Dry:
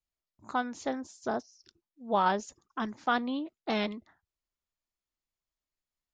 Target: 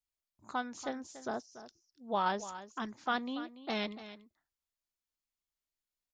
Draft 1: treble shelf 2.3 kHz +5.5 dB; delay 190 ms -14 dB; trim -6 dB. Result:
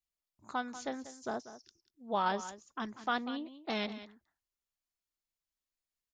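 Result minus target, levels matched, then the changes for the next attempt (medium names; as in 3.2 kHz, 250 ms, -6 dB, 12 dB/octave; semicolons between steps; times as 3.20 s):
echo 97 ms early
change: delay 287 ms -14 dB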